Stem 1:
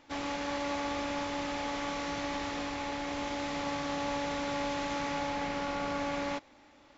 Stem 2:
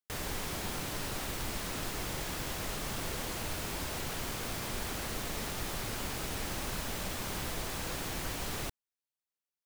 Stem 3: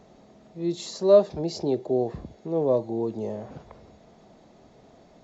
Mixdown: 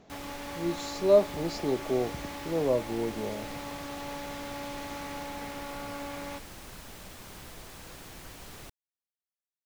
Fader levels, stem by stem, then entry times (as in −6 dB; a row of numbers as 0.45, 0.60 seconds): −5.5, −9.0, −4.0 decibels; 0.00, 0.00, 0.00 seconds